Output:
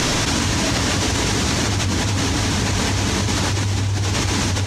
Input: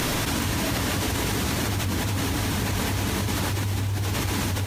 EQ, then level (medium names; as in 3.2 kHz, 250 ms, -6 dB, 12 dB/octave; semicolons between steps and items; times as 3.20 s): resonant low-pass 6.5 kHz, resonance Q 1.7; +5.5 dB